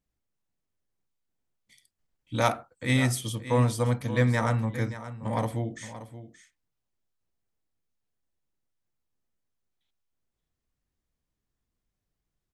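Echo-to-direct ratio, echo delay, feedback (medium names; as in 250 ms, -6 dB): -13.5 dB, 576 ms, no regular repeats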